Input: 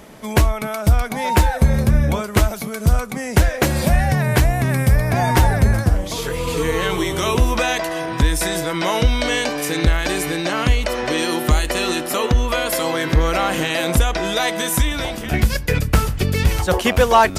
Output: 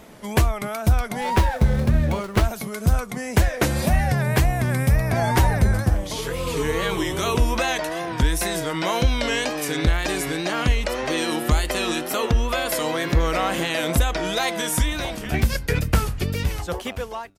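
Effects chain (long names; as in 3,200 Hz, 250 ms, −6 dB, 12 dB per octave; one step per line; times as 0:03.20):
fade-out on the ending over 1.44 s
tape wow and flutter 96 cents
0:01.21–0:02.45: windowed peak hold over 5 samples
level −3.5 dB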